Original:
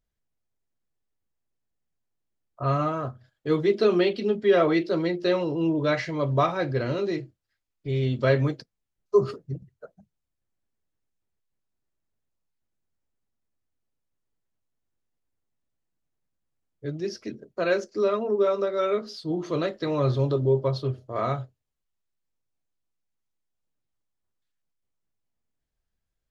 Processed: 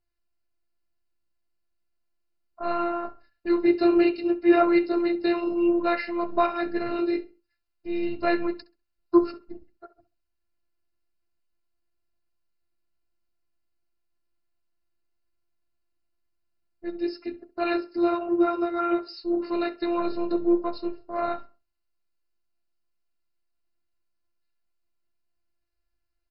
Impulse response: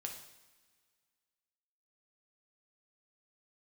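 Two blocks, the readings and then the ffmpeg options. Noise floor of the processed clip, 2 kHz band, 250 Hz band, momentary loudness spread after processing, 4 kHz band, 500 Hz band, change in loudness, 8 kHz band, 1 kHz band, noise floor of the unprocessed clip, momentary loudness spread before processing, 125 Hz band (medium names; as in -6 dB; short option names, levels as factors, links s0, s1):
-77 dBFS, -1.0 dB, +5.0 dB, 13 LU, -3.5 dB, -2.5 dB, 0.0 dB, no reading, +2.0 dB, -82 dBFS, 13 LU, under -20 dB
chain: -filter_complex "[0:a]adynamicequalizer=threshold=0.00447:dfrequency=4000:dqfactor=1.4:tfrequency=4000:tqfactor=1.4:attack=5:release=100:ratio=0.375:range=2.5:mode=cutabove:tftype=bell,afftfilt=real='hypot(re,im)*cos(PI*b)':imag='0':win_size=512:overlap=0.75,asplit=2[s0][s1];[s1]adelay=66,lowpass=f=2400:p=1,volume=0.158,asplit=2[s2][s3];[s3]adelay=66,lowpass=f=2400:p=1,volume=0.31,asplit=2[s4][s5];[s5]adelay=66,lowpass=f=2400:p=1,volume=0.31[s6];[s2][s4][s6]amix=inputs=3:normalize=0[s7];[s0][s7]amix=inputs=2:normalize=0,volume=1.58" -ar 48000 -c:a mp2 -b:a 32k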